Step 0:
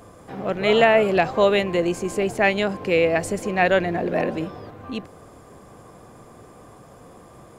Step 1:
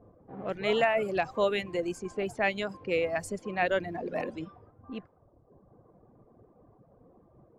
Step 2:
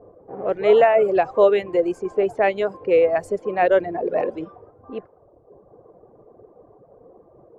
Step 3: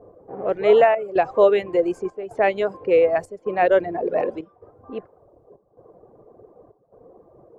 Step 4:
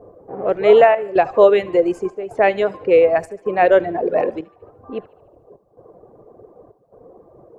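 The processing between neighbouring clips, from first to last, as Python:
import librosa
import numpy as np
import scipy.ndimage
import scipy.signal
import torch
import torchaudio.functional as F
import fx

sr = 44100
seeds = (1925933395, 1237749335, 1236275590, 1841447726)

y1 = fx.env_lowpass(x, sr, base_hz=540.0, full_db=-19.0)
y1 = fx.dereverb_blind(y1, sr, rt60_s=1.3)
y1 = y1 * librosa.db_to_amplitude(-8.5)
y2 = fx.curve_eq(y1, sr, hz=(250.0, 420.0, 5200.0), db=(0, 13, -6))
y2 = y2 * librosa.db_to_amplitude(1.5)
y3 = fx.step_gate(y2, sr, bpm=143, pattern='xxxxxxxxx..', floor_db=-12.0, edge_ms=4.5)
y4 = fx.echo_thinned(y3, sr, ms=74, feedback_pct=54, hz=520.0, wet_db=-20.5)
y4 = y4 * librosa.db_to_amplitude(4.0)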